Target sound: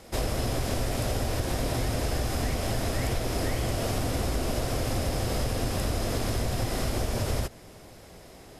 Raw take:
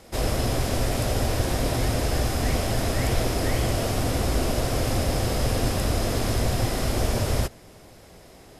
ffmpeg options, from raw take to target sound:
-af "acompressor=threshold=0.0631:ratio=6"

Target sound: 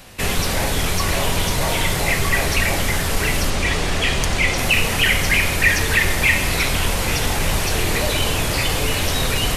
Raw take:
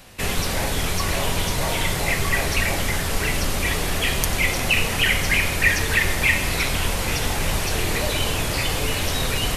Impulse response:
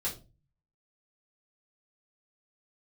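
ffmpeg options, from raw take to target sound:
-filter_complex "[0:a]asettb=1/sr,asplit=3[s0][s1][s2];[s0]atrim=end=3.504[s3];[s1]atrim=start=3.5:end=4.58,asetpts=PTS-STARTPTS,afade=t=in:d=0.004:c=qsin,afade=t=out:st=1.076:d=0.004:c=qsin,lowpass=7700[s4];[s2]atrim=start=4.576[s5];[s3][s4]acrossfade=d=0.004:c1=hsin:c2=qsin[s6];[s6][s5]acrossfade=d=0.004:c1=qsin:c2=hsin,asplit=2[s7][s8];[s8]asoftclip=type=tanh:threshold=0.15,volume=0.531[s9];[s7][s9]amix=inputs=2:normalize=0"

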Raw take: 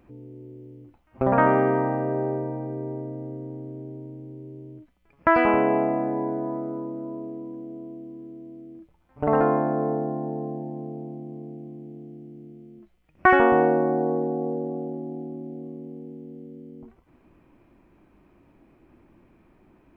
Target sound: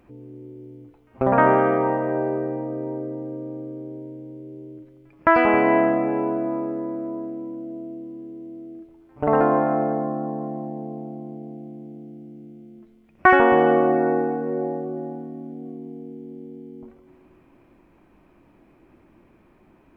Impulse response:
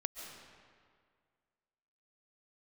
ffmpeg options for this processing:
-filter_complex "[0:a]asplit=2[s0][s1];[1:a]atrim=start_sample=2205,asetrate=35721,aresample=44100,lowshelf=f=160:g=-10[s2];[s1][s2]afir=irnorm=-1:irlink=0,volume=1.06[s3];[s0][s3]amix=inputs=2:normalize=0,volume=0.708"

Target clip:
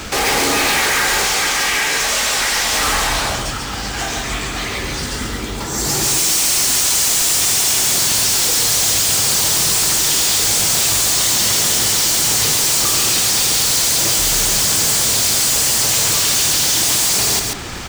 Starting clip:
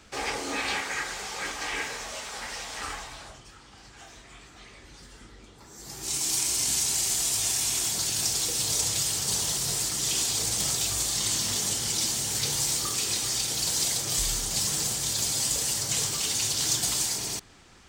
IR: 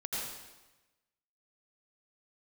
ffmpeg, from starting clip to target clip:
-filter_complex "[0:a]asettb=1/sr,asplit=3[s0][s1][s2];[s0]atrim=end=1.244[s3];[s1]atrim=start=1.24:end=2.73,asetpts=PTS-STARTPTS,afade=t=in:d=0.004:c=qsin,afade=t=out:st=1.486:d=0.004:c=qsin,acrossover=split=540|1300[s4][s5][s6];[s4]acompressor=threshold=0.00178:ratio=4[s7];[s5]acompressor=threshold=0.00251:ratio=4[s8];[s6]acompressor=threshold=0.0126:ratio=4[s9];[s7][s8][s9]amix=inputs=3:normalize=0[s10];[s2]atrim=start=2.726[s11];[s3][s10]acrossfade=d=0.004:c1=hsin:c2=qsin[s12];[s12][s11]acrossfade=d=0.004:c1=qsin:c2=hsin,asplit=2[s13][s14];[s14]acrusher=bits=6:mix=0:aa=0.000001,volume=0.473[s15];[s13][s15]amix=inputs=2:normalize=0,apsyclip=17.8,asoftclip=type=hard:threshold=0.188,acrusher=bits=3:mode=log:mix=0:aa=0.000001,aecho=1:1:138:0.596"

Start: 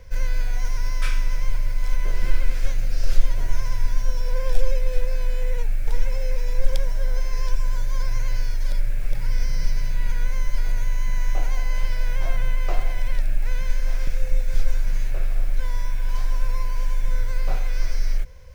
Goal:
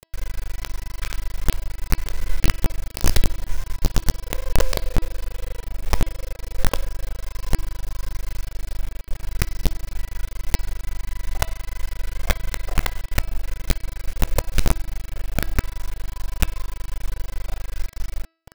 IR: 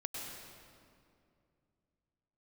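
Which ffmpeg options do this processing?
-af "acrusher=bits=3:dc=4:mix=0:aa=0.000001,bandreject=f=326.7:t=h:w=4,bandreject=f=653.4:t=h:w=4,bandreject=f=980.1:t=h:w=4,bandreject=f=1306.8:t=h:w=4,bandreject=f=1633.5:t=h:w=4,bandreject=f=1960.2:t=h:w=4,bandreject=f=2286.9:t=h:w=4,bandreject=f=2613.6:t=h:w=4,bandreject=f=2940.3:t=h:w=4,bandreject=f=3267:t=h:w=4,bandreject=f=3593.7:t=h:w=4,bandreject=f=3920.4:t=h:w=4,bandreject=f=4247.1:t=h:w=4,bandreject=f=4573.8:t=h:w=4,bandreject=f=4900.5:t=h:w=4,bandreject=f=5227.2:t=h:w=4,volume=0.708"

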